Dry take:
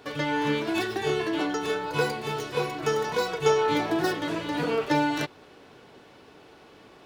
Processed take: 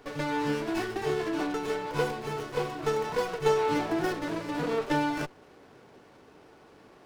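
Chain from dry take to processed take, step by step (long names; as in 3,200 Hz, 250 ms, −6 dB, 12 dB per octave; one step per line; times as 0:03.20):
windowed peak hold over 9 samples
level −2.5 dB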